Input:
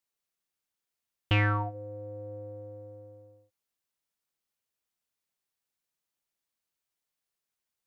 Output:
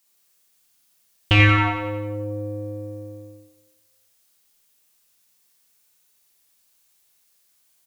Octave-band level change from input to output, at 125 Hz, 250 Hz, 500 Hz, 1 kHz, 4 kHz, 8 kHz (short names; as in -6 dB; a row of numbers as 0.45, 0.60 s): +10.0 dB, +13.0 dB, +9.0 dB, +9.5 dB, +13.5 dB, n/a